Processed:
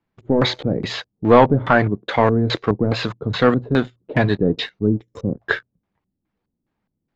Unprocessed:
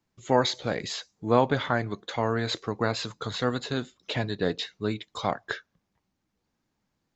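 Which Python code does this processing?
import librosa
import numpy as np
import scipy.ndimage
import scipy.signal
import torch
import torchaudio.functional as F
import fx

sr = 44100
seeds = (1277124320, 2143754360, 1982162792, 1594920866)

y = fx.spec_box(x, sr, start_s=4.87, length_s=0.53, low_hz=580.0, high_hz=5200.0, gain_db=-19)
y = fx.hum_notches(y, sr, base_hz=60, count=2)
y = fx.leveller(y, sr, passes=2)
y = fx.filter_lfo_lowpass(y, sr, shape='square', hz=2.4, low_hz=340.0, high_hz=2600.0, q=0.78)
y = y * 10.0 ** (6.0 / 20.0)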